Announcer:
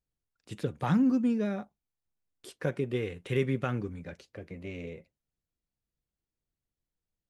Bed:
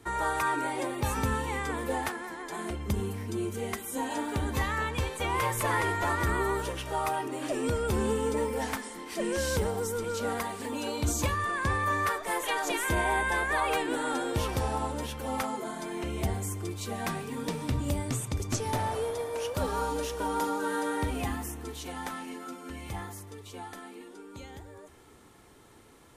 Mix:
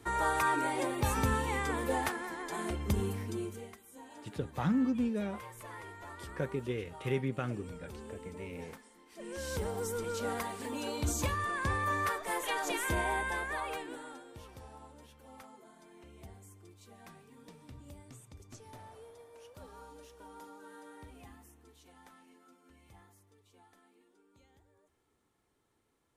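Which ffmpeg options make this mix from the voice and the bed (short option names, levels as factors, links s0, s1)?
-filter_complex "[0:a]adelay=3750,volume=0.596[s0];[1:a]volume=5.01,afade=t=out:st=3.12:d=0.62:silence=0.125893,afade=t=in:st=9.13:d=0.75:silence=0.177828,afade=t=out:st=12.89:d=1.35:silence=0.141254[s1];[s0][s1]amix=inputs=2:normalize=0"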